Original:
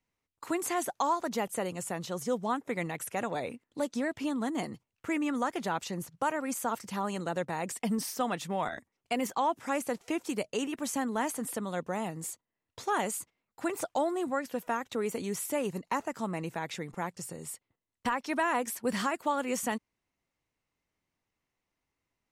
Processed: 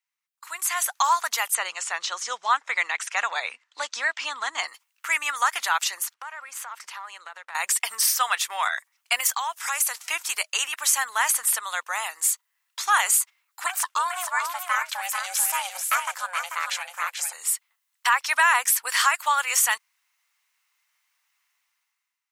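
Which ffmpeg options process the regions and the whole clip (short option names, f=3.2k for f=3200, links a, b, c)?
-filter_complex "[0:a]asettb=1/sr,asplit=3[a][b][c];[a]atrim=end=1.554[d];[b]atrim=start=1.55:end=4.68,asetpts=PTS-STARTPTS,afade=t=in:d=0.004:c=qsin,afade=t=out:st=3.126:d=0.004:c=qsin,lowpass=f=6.7k:w=0.5412,lowpass=f=6.7k:w=1.3066,equalizer=f=120:t=o:w=2.6:g=11[e];[c]atrim=start=4.676[f];[d][e]acrossfade=d=0.004:c1=hsin:c2=qsin[g];[g][f]acrossfade=d=0.004:c1=qsin:c2=hsin,asettb=1/sr,asplit=3[h][i][j];[h]atrim=end=6.144[k];[i]atrim=start=6.14:end=7.55,asetpts=PTS-STARTPTS,afade=t=in:d=0.004:c=qsin,afade=t=out:st=1.406:d=0.004:c=qsin,aeval=exprs='if(lt(val(0),0),0.708*val(0),val(0))':c=same,aemphasis=mode=reproduction:type=75kf,acompressor=threshold=-39dB:ratio=10:attack=3.2:release=140:knee=1:detection=peak[l];[j]atrim=start=7.546[m];[k][l]acrossfade=d=0.004:c1=hsin:c2=qsin[n];[n][m]acrossfade=d=0.004:c1=qsin:c2=hsin,asettb=1/sr,asplit=3[o][p][q];[o]atrim=end=9.204[r];[p]atrim=start=9.2:end=10.06,asetpts=PTS-STARTPTS,afade=t=in:d=0.004:c=qsin,afade=t=out:st=0.856:d=0.004:c=qsin,bass=f=250:g=-9,treble=f=4k:g=5,acompressor=threshold=-32dB:ratio=4:attack=3.2:release=140:knee=1:detection=peak[s];[q]atrim=start=10.056[t];[r][s]acrossfade=d=0.004:c1=hsin:c2=qsin[u];[u][t]acrossfade=d=0.004:c1=qsin:c2=hsin,asettb=1/sr,asplit=3[v][w][x];[v]atrim=end=13.664[y];[w]atrim=start=13.66:end=17.33,asetpts=PTS-STARTPTS,afade=t=in:d=0.004:c=qsin,afade=t=out:st=3.666:d=0.004:c=qsin,aeval=exprs='val(0)*sin(2*PI*360*n/s)':c=same,aecho=1:1:439:0.473,atrim=end_sample=161847[z];[x]atrim=start=17.326[aa];[y][z]acrossfade=d=0.004:c1=hsin:c2=qsin[ab];[ab][aa]acrossfade=d=0.004:c1=qsin:c2=hsin,highpass=f=1.1k:w=0.5412,highpass=f=1.1k:w=1.3066,highshelf=f=8.9k:g=5.5,dynaudnorm=f=160:g=9:m=16dB,volume=-1.5dB"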